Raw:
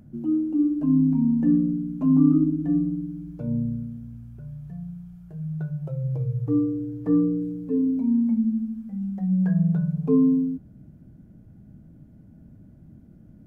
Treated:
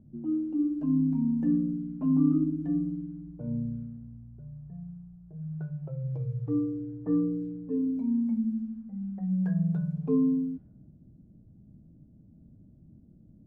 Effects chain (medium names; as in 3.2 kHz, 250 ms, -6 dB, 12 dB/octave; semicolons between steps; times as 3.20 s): level-controlled noise filter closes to 460 Hz, open at -19.5 dBFS; trim -6 dB